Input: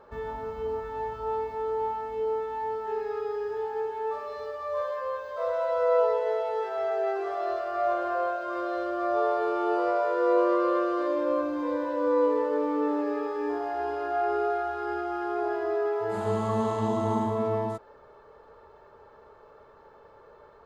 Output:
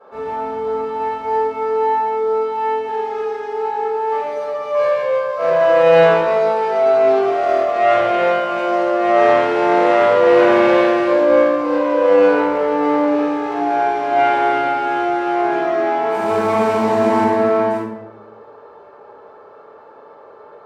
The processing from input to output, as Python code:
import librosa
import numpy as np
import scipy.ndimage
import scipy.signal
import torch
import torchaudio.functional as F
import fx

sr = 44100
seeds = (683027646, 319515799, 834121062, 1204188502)

y = fx.tracing_dist(x, sr, depth_ms=0.4)
y = scipy.signal.sosfilt(scipy.signal.butter(2, 250.0, 'highpass', fs=sr, output='sos'), y)
y = fx.high_shelf(y, sr, hz=3400.0, db=-8.5)
y = fx.room_shoebox(y, sr, seeds[0], volume_m3=250.0, walls='mixed', distance_m=6.8)
y = F.gain(torch.from_numpy(y), -4.0).numpy()